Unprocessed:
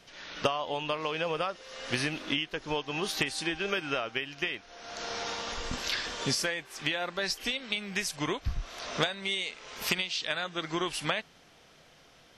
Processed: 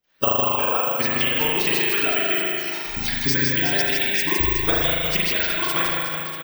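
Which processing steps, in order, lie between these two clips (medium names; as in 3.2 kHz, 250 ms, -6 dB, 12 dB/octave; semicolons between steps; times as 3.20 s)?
spectral noise reduction 25 dB; time stretch by phase-locked vocoder 0.52×; harmonic-percussive split harmonic -12 dB; on a send: reverse bouncing-ball echo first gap 160 ms, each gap 1.3×, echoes 5; on the sum: spring tank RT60 1.5 s, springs 38 ms, chirp 60 ms, DRR -4 dB; careless resampling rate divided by 2×, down filtered, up zero stuff; trim +6.5 dB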